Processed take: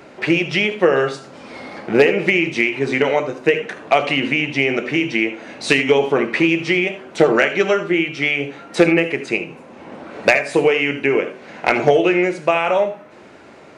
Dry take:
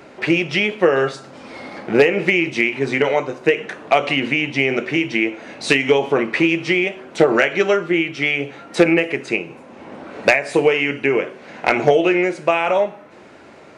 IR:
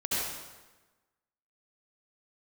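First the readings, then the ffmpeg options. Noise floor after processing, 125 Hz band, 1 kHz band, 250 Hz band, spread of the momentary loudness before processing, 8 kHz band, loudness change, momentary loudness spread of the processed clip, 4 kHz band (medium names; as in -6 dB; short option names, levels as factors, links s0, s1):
-43 dBFS, +1.0 dB, +0.5 dB, +0.5 dB, 9 LU, +0.5 dB, +0.5 dB, 9 LU, +0.5 dB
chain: -filter_complex "[0:a]asplit=2[s0][s1];[1:a]atrim=start_sample=2205,atrim=end_sample=3969[s2];[s1][s2]afir=irnorm=-1:irlink=0,volume=0.2[s3];[s0][s3]amix=inputs=2:normalize=0,volume=0.891"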